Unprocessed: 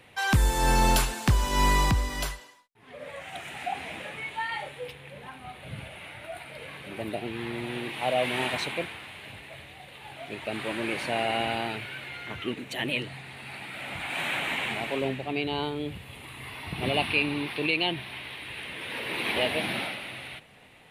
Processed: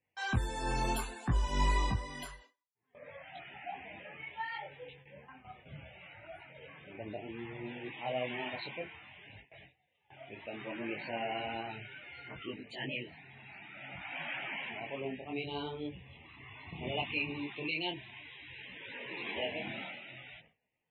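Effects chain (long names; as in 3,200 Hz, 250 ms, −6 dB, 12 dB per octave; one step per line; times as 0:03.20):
spectral peaks only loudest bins 64
noise gate with hold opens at −35 dBFS
micro pitch shift up and down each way 22 cents
level −5.5 dB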